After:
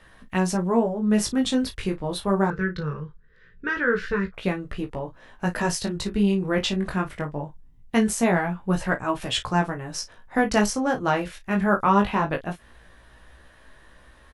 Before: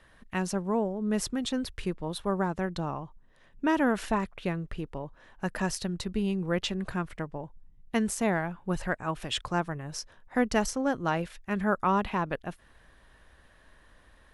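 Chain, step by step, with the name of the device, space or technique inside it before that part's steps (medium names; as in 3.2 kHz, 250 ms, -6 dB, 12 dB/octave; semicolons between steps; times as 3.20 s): double-tracked vocal (doubling 34 ms -12 dB; chorus 0.22 Hz, delay 15.5 ms, depth 5.4 ms); 2.50–4.34 s: FFT filter 190 Hz 0 dB, 270 Hz -16 dB, 460 Hz +5 dB, 700 Hz -29 dB, 1.5 kHz +5 dB, 2.9 kHz -7 dB, 4.8 kHz -5 dB, 9.6 kHz -26 dB; trim +9 dB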